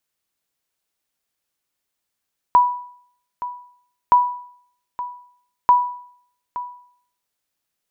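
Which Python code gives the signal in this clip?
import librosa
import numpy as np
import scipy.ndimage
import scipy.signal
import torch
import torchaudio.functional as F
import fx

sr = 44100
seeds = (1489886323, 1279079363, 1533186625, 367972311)

y = fx.sonar_ping(sr, hz=982.0, decay_s=0.6, every_s=1.57, pings=3, echo_s=0.87, echo_db=-15.0, level_db=-6.0)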